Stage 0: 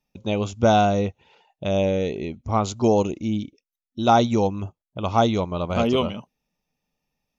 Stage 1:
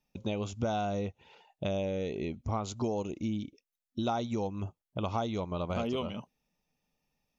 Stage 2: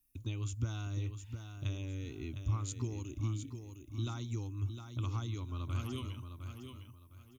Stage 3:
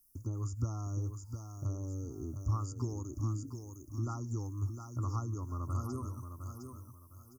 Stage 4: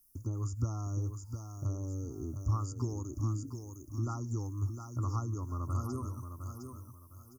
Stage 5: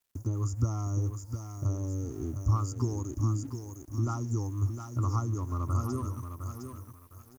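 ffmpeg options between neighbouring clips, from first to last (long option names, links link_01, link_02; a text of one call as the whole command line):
ffmpeg -i in.wav -af "acompressor=threshold=-29dB:ratio=5,volume=-1.5dB" out.wav
ffmpeg -i in.wav -af "firequalizer=gain_entry='entry(120,0);entry(190,-28);entry(270,-4);entry(490,-26);entry(720,-28);entry(1100,-11);entry(5600,-8);entry(9400,13)':delay=0.05:min_phase=1,aecho=1:1:708|1416|2124:0.398|0.111|0.0312,volume=3dB" out.wav
ffmpeg -i in.wav -filter_complex "[0:a]tiltshelf=frequency=1200:gain=-4,acrossover=split=3500[link_01][link_02];[link_02]acompressor=threshold=-56dB:ratio=4:attack=1:release=60[link_03];[link_01][link_03]amix=inputs=2:normalize=0,afftfilt=real='re*(1-between(b*sr/4096,1400,4600))':imag='im*(1-between(b*sr/4096,1400,4600))':win_size=4096:overlap=0.75,volume=5dB" out.wav
ffmpeg -i in.wav -af "bandreject=frequency=7900:width=30,volume=1.5dB" out.wav
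ffmpeg -i in.wav -af "aeval=exprs='sgn(val(0))*max(abs(val(0))-0.001,0)':channel_layout=same,volume=5dB" out.wav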